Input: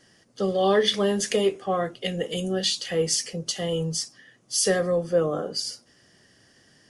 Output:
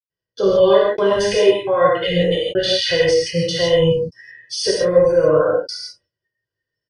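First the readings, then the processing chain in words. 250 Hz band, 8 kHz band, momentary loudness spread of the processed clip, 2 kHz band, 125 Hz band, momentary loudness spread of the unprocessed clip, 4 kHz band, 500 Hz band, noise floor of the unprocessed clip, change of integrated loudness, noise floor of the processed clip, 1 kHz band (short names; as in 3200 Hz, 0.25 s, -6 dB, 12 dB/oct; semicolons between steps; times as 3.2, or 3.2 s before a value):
+5.0 dB, -3.0 dB, 9 LU, +8.5 dB, +7.0 dB, 9 LU, +6.0 dB, +10.5 dB, -60 dBFS, +8.5 dB, under -85 dBFS, +7.0 dB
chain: spectral noise reduction 24 dB; gate with hold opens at -52 dBFS; low shelf 340 Hz +5 dB; comb 2 ms, depth 79%; dynamic EQ 1100 Hz, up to +5 dB, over -32 dBFS, Q 0.83; in parallel at -0.5 dB: compressor, threshold -29 dBFS, peak gain reduction 18.5 dB; on the sum: limiter -15.5 dBFS, peak gain reduction 12 dB; polynomial smoothing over 15 samples; step gate ".xxxxxxx..xxxxxx" 153 bpm -60 dB; non-linear reverb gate 0.19 s flat, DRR -4.5 dB; gain +3.5 dB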